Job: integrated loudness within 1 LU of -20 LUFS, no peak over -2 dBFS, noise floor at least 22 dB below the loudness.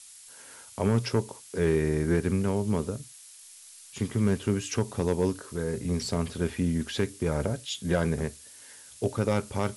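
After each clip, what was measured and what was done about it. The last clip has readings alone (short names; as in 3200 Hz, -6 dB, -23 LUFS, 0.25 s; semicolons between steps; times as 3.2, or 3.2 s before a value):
clipped 0.3%; flat tops at -15.0 dBFS; noise floor -50 dBFS; noise floor target -51 dBFS; loudness -29.0 LUFS; peak -15.0 dBFS; loudness target -20.0 LUFS
-> clip repair -15 dBFS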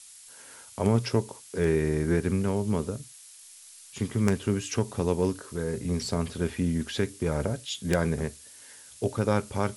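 clipped 0.0%; noise floor -50 dBFS; noise floor target -51 dBFS
-> denoiser 6 dB, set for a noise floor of -50 dBFS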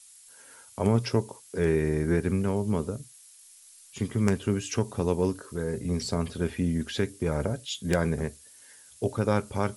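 noise floor -53 dBFS; loudness -28.5 LUFS; peak -6.0 dBFS; loudness target -20.0 LUFS
-> gain +8.5 dB; limiter -2 dBFS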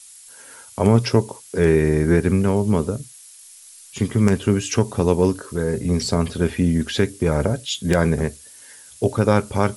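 loudness -20.0 LUFS; peak -2.0 dBFS; noise floor -45 dBFS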